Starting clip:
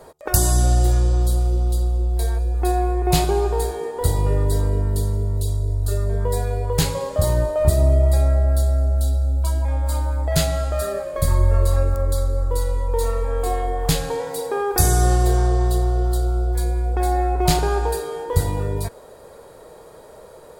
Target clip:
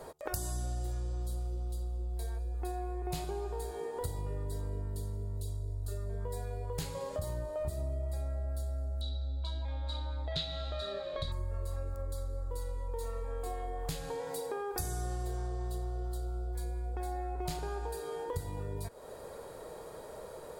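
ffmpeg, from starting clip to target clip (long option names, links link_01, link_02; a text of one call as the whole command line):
ffmpeg -i in.wav -filter_complex "[0:a]asettb=1/sr,asplit=3[link_01][link_02][link_03];[link_01]atrim=end=9.014[link_04];[link_02]atrim=start=9.01:end=11.32,asetpts=PTS-STARTPTS,afade=type=in:duration=0.004:curve=qsin,afade=type=out:start_time=2.306:duration=0.004:curve=qsin,lowpass=frequency=3800:width_type=q:width=12[link_05];[link_03]atrim=start=11.316[link_06];[link_04][link_05]acrossfade=duration=0.004:curve1=hsin:curve2=qsin[link_07];[link_07][link_06]acrossfade=duration=0.004:curve1=qsin:curve2=hsin,acompressor=threshold=-34dB:ratio=4,volume=-3dB" out.wav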